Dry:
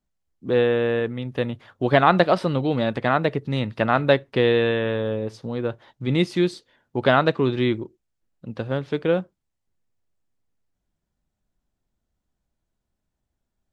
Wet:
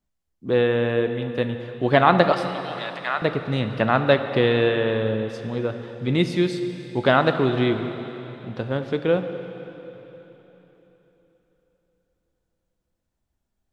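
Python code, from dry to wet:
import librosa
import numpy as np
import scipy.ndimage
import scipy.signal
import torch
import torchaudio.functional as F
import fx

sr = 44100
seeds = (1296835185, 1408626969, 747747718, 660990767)

y = fx.highpass(x, sr, hz=1200.0, slope=12, at=(2.32, 3.22))
y = fx.rev_plate(y, sr, seeds[0], rt60_s=3.8, hf_ratio=0.95, predelay_ms=0, drr_db=7.5)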